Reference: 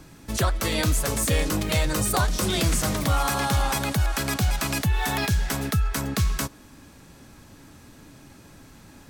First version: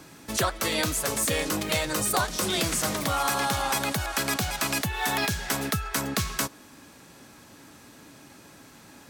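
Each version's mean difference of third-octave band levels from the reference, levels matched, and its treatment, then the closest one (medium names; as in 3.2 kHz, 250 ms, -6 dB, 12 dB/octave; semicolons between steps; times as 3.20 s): 3.0 dB: high-pass 300 Hz 6 dB/octave; in parallel at -2 dB: gain riding 0.5 s; on the sum: trim -4.5 dB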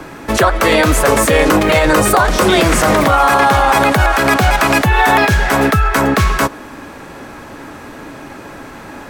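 5.0 dB: three-band isolator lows -14 dB, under 310 Hz, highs -14 dB, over 2.4 kHz; loudness maximiser +23.5 dB; trim -1 dB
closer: first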